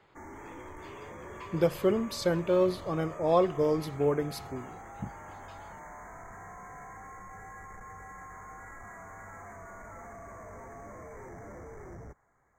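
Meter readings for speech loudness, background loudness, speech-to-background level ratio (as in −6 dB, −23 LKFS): −28.5 LKFS, −46.5 LKFS, 18.0 dB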